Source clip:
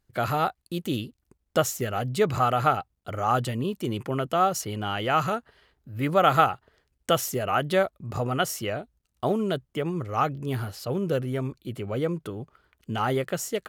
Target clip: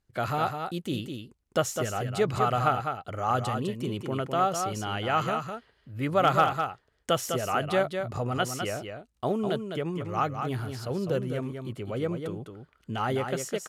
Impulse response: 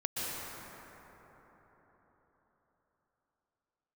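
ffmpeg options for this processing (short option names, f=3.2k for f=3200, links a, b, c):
-af "lowpass=11k,asoftclip=type=hard:threshold=-8.5dB,aecho=1:1:204:0.473,volume=-3dB"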